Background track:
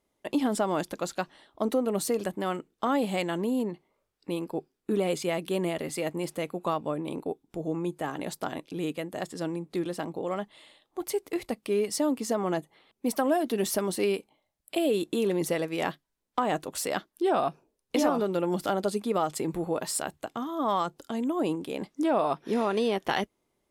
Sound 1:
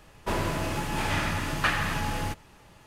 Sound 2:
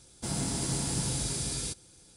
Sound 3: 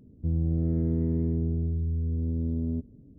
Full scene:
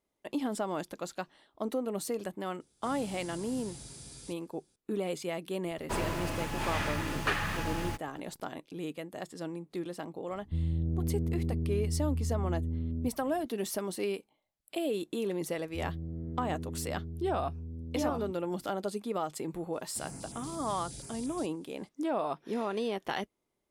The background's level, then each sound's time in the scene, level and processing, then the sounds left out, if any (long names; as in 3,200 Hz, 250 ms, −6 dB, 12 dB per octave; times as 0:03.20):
background track −6.5 dB
0:02.60: mix in 2 −15 dB
0:05.63: mix in 1 −5 dB + hold until the input has moved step −44.5 dBFS
0:10.28: mix in 3 −11 dB + spectral tilt −2 dB per octave
0:15.51: mix in 3 −12.5 dB
0:19.73: mix in 2 −12.5 dB + notch on a step sequencer 8.5 Hz 880–4,500 Hz